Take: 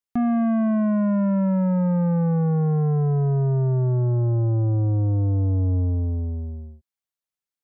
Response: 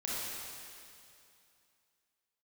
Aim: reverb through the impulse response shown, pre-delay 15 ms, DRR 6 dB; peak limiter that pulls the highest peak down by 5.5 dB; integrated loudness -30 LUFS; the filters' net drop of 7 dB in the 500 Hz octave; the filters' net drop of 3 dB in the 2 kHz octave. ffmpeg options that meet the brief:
-filter_complex "[0:a]equalizer=f=500:t=o:g=-9,equalizer=f=2000:t=o:g=-3.5,alimiter=limit=0.0631:level=0:latency=1,asplit=2[s0][s1];[1:a]atrim=start_sample=2205,adelay=15[s2];[s1][s2]afir=irnorm=-1:irlink=0,volume=0.299[s3];[s0][s3]amix=inputs=2:normalize=0,volume=0.708"

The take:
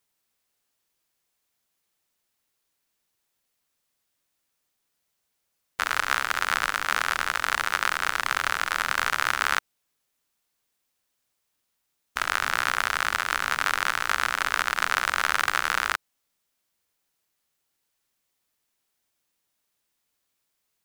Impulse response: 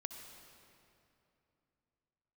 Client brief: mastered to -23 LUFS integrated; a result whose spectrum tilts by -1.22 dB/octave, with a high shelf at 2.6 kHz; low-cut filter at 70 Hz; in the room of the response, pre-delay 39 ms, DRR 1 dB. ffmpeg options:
-filter_complex "[0:a]highpass=70,highshelf=f=2600:g=-9,asplit=2[s0][s1];[1:a]atrim=start_sample=2205,adelay=39[s2];[s1][s2]afir=irnorm=-1:irlink=0,volume=1.19[s3];[s0][s3]amix=inputs=2:normalize=0,volume=1.33"

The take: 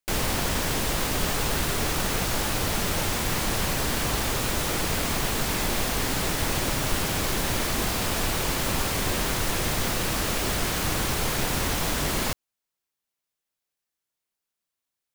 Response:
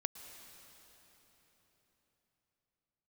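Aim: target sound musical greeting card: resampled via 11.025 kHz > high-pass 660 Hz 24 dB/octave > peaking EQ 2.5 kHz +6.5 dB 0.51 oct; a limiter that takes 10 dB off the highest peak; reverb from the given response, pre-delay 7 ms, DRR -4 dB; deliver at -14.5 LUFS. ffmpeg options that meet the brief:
-filter_complex "[0:a]alimiter=limit=0.075:level=0:latency=1,asplit=2[s0][s1];[1:a]atrim=start_sample=2205,adelay=7[s2];[s1][s2]afir=irnorm=-1:irlink=0,volume=1.68[s3];[s0][s3]amix=inputs=2:normalize=0,aresample=11025,aresample=44100,highpass=f=660:w=0.5412,highpass=f=660:w=1.3066,equalizer=f=2500:t=o:w=0.51:g=6.5,volume=4.47"

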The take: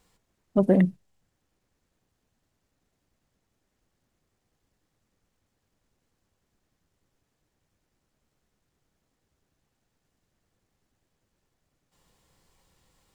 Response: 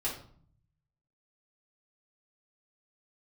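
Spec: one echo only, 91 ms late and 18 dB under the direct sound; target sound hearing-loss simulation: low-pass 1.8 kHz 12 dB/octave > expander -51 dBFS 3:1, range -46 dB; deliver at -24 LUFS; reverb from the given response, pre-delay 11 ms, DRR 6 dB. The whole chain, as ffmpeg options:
-filter_complex "[0:a]aecho=1:1:91:0.126,asplit=2[s0][s1];[1:a]atrim=start_sample=2205,adelay=11[s2];[s1][s2]afir=irnorm=-1:irlink=0,volume=0.299[s3];[s0][s3]amix=inputs=2:normalize=0,lowpass=1800,agate=range=0.00501:threshold=0.00282:ratio=3,volume=0.841"

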